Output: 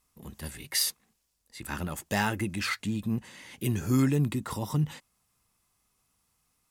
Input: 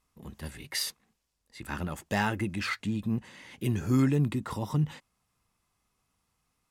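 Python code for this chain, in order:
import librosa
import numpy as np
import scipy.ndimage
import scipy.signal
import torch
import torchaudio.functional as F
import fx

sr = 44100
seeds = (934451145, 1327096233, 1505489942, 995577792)

y = fx.high_shelf(x, sr, hz=6000.0, db=10.0)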